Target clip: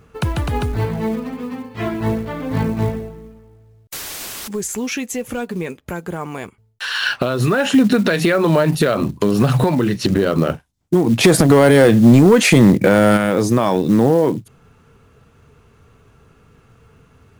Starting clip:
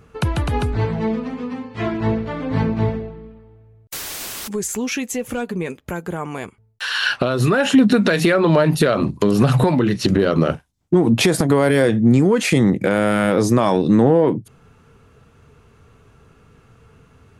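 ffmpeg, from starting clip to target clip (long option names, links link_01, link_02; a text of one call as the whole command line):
ffmpeg -i in.wav -filter_complex "[0:a]asplit=3[link_01][link_02][link_03];[link_01]afade=type=out:start_time=11.23:duration=0.02[link_04];[link_02]acontrast=76,afade=type=in:start_time=11.23:duration=0.02,afade=type=out:start_time=13.16:duration=0.02[link_05];[link_03]afade=type=in:start_time=13.16:duration=0.02[link_06];[link_04][link_05][link_06]amix=inputs=3:normalize=0,acrusher=bits=7:mode=log:mix=0:aa=0.000001" out.wav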